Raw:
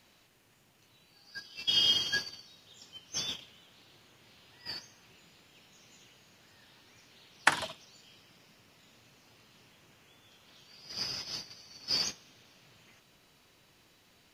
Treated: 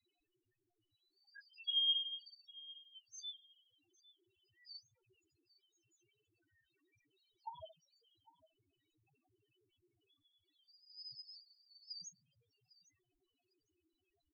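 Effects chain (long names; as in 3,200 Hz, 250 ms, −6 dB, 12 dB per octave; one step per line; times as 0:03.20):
flanger swept by the level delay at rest 2.9 ms, full sweep at −29.5 dBFS
repeating echo 804 ms, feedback 18%, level −20.5 dB
spectral peaks only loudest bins 2
level −4 dB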